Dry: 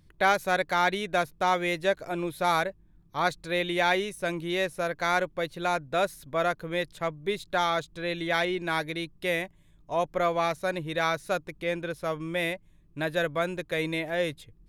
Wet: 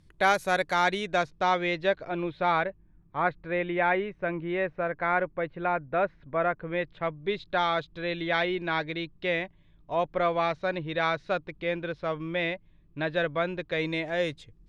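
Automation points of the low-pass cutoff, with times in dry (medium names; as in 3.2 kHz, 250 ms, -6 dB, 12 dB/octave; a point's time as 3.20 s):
low-pass 24 dB/octave
0.66 s 11 kHz
1.54 s 5.1 kHz
3.28 s 2.3 kHz
6.51 s 2.3 kHz
7.37 s 4.2 kHz
13.58 s 4.2 kHz
14.13 s 7.2 kHz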